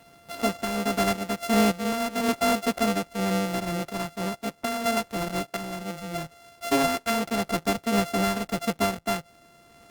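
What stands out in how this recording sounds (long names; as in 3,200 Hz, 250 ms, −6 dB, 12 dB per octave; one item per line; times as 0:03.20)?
a buzz of ramps at a fixed pitch in blocks of 64 samples
sample-and-hold tremolo
Opus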